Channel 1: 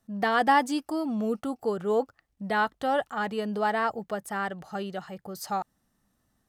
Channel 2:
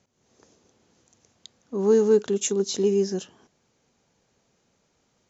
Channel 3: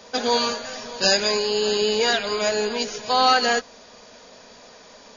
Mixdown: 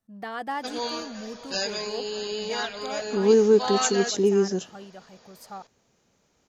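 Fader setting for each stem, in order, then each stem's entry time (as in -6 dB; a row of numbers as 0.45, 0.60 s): -10.0, +1.0, -10.0 dB; 0.00, 1.40, 0.50 s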